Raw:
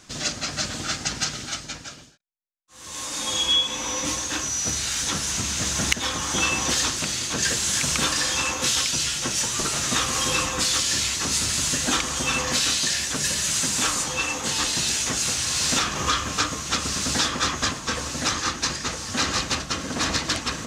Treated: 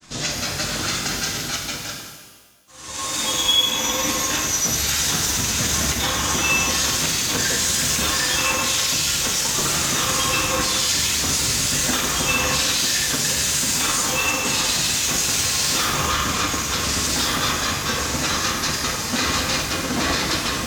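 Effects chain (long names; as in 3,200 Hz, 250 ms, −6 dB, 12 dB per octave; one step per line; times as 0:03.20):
brickwall limiter −17 dBFS, peak gain reduction 11.5 dB
granular cloud 100 ms, grains 20 per second, spray 16 ms, pitch spread up and down by 0 semitones
reverb with rising layers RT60 1.3 s, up +12 semitones, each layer −8 dB, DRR 1 dB
level +5 dB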